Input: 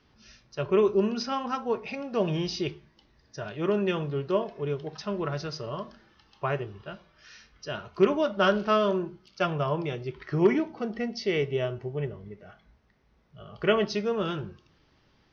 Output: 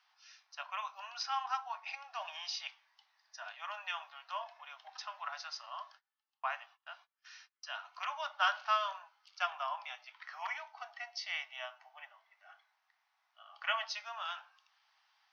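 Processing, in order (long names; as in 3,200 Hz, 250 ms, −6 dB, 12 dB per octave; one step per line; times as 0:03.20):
Butterworth high-pass 720 Hz 72 dB per octave
0:05.32–0:07.77: noise gate −54 dBFS, range −28 dB
level −4 dB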